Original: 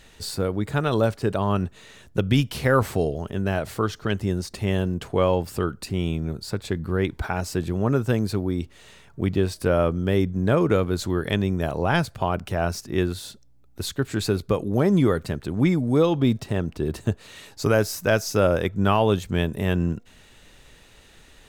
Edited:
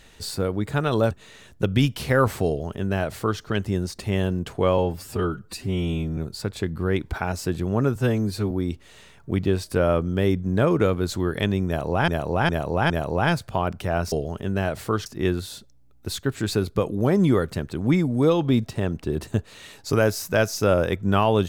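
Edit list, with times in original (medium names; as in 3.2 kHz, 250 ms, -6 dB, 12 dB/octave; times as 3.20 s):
1.11–1.66 s: delete
3.02–3.96 s: copy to 12.79 s
5.33–6.26 s: stretch 1.5×
8.04–8.41 s: stretch 1.5×
11.57–11.98 s: loop, 4 plays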